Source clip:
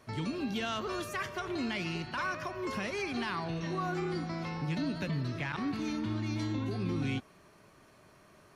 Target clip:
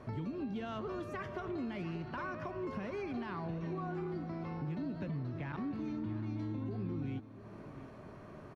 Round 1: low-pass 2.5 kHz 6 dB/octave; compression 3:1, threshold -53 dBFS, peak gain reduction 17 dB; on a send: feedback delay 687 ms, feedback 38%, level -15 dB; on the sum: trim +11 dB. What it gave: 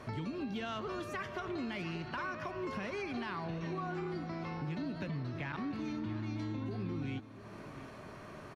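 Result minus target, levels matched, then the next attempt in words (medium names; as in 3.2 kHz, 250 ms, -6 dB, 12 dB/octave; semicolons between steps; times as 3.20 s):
2 kHz band +5.0 dB
low-pass 670 Hz 6 dB/octave; compression 3:1, threshold -53 dBFS, peak gain reduction 16.5 dB; on a send: feedback delay 687 ms, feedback 38%, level -15 dB; on the sum: trim +11 dB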